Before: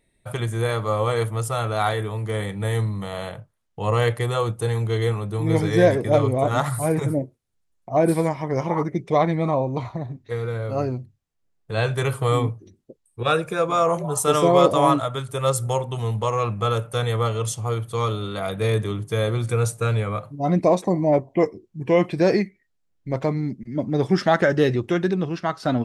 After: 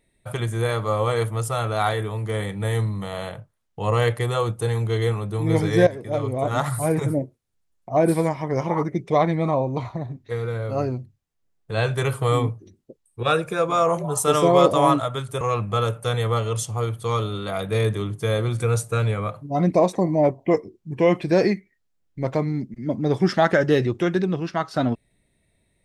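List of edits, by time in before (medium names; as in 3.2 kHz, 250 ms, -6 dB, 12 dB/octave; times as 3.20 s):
5.87–6.73 s: fade in linear, from -15.5 dB
15.41–16.30 s: delete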